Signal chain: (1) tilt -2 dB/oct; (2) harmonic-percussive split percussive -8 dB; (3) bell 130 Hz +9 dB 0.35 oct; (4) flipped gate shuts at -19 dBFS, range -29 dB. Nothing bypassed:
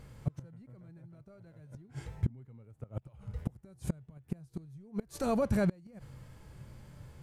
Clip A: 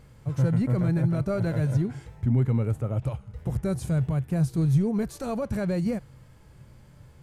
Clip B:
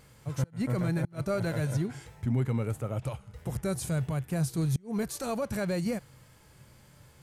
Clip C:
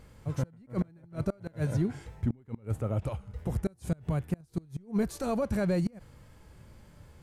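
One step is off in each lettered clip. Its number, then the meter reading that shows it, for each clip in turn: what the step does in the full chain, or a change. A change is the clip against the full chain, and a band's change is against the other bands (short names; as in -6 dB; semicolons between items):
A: 4, momentary loudness spread change -14 LU; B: 1, 8 kHz band +6.0 dB; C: 3, 125 Hz band +2.5 dB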